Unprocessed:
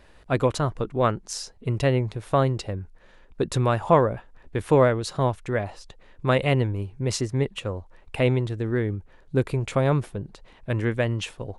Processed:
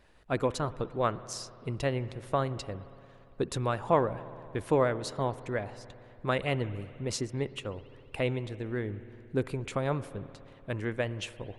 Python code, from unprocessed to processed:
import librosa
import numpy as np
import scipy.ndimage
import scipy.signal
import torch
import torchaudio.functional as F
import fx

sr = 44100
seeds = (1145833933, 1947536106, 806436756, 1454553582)

y = fx.rev_spring(x, sr, rt60_s=2.9, pass_ms=(57,), chirp_ms=70, drr_db=13.5)
y = fx.hpss(y, sr, part='harmonic', gain_db=-5)
y = y * 10.0 ** (-5.5 / 20.0)